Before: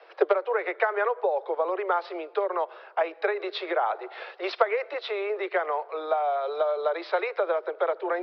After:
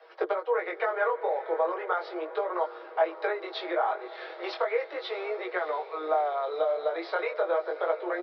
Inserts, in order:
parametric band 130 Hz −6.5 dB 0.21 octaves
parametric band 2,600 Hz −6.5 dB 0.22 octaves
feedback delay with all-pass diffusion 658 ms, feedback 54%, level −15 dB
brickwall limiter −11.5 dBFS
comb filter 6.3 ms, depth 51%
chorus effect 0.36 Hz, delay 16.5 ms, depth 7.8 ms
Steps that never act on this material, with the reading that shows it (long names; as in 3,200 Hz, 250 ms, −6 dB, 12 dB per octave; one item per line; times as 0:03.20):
parametric band 130 Hz: nothing at its input below 300 Hz